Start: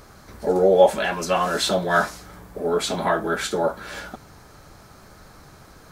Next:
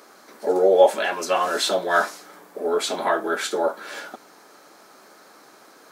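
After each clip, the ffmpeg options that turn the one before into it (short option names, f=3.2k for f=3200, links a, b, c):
-af "highpass=f=270:w=0.5412,highpass=f=270:w=1.3066"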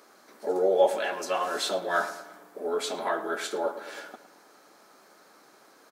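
-filter_complex "[0:a]asplit=2[a][b];[b]adelay=110,lowpass=f=2.2k:p=1,volume=-12dB,asplit=2[c][d];[d]adelay=110,lowpass=f=2.2k:p=1,volume=0.54,asplit=2[e][f];[f]adelay=110,lowpass=f=2.2k:p=1,volume=0.54,asplit=2[g][h];[h]adelay=110,lowpass=f=2.2k:p=1,volume=0.54,asplit=2[i][j];[j]adelay=110,lowpass=f=2.2k:p=1,volume=0.54,asplit=2[k][l];[l]adelay=110,lowpass=f=2.2k:p=1,volume=0.54[m];[a][c][e][g][i][k][m]amix=inputs=7:normalize=0,volume=-7dB"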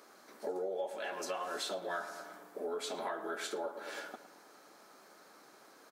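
-af "acompressor=threshold=-33dB:ratio=6,volume=-2.5dB"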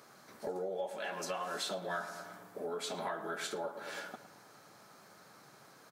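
-af "lowshelf=f=190:t=q:w=1.5:g=14,volume=1dB"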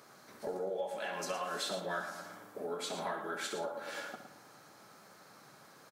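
-af "aecho=1:1:64.14|113.7:0.316|0.316"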